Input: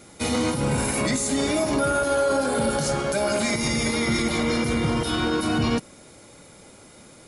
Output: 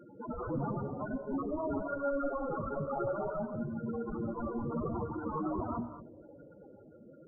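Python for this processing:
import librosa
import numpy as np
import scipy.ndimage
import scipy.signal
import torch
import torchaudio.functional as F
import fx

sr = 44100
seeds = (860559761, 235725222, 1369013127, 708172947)

p1 = fx.octave_divider(x, sr, octaves=2, level_db=-2.0)
p2 = scipy.signal.sosfilt(scipy.signal.butter(4, 97.0, 'highpass', fs=sr, output='sos'), p1)
p3 = fx.peak_eq(p2, sr, hz=180.0, db=-3.5, octaves=2.2)
p4 = fx.hum_notches(p3, sr, base_hz=60, count=5)
p5 = fx.rider(p4, sr, range_db=10, speed_s=0.5)
p6 = (np.mod(10.0 ** (21.0 / 20.0) * p5 + 1.0, 2.0) - 1.0) / 10.0 ** (21.0 / 20.0)
p7 = fx.spec_topn(p6, sr, count=8)
p8 = fx.brickwall_lowpass(p7, sr, high_hz=1500.0)
p9 = p8 + fx.echo_bbd(p8, sr, ms=209, stages=1024, feedback_pct=78, wet_db=-24.0, dry=0)
y = fx.rev_gated(p9, sr, seeds[0], gate_ms=250, shape='rising', drr_db=9.5)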